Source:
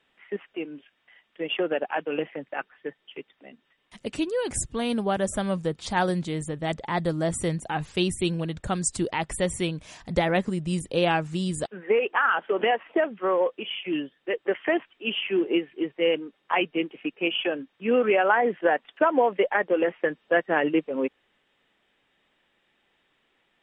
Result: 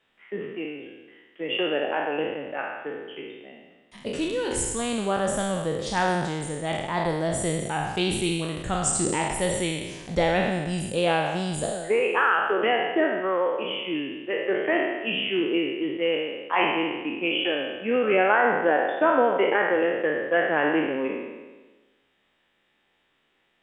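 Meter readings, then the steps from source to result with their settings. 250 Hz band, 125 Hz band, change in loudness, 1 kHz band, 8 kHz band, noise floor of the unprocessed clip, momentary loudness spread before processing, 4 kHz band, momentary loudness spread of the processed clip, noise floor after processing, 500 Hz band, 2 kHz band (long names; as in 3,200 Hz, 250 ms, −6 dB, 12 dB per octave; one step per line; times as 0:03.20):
0.0 dB, −0.5 dB, +1.5 dB, +2.0 dB, +4.0 dB, −71 dBFS, 10 LU, +2.5 dB, 12 LU, −69 dBFS, +1.0 dB, +2.5 dB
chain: peak hold with a decay on every bin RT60 1.27 s
level −2.5 dB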